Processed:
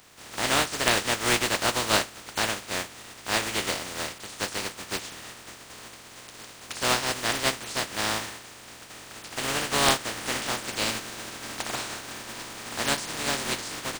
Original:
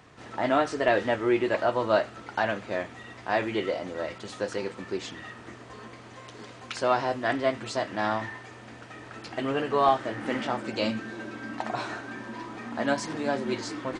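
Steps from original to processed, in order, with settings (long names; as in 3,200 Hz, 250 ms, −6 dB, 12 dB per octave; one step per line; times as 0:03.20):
compressing power law on the bin magnitudes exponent 0.28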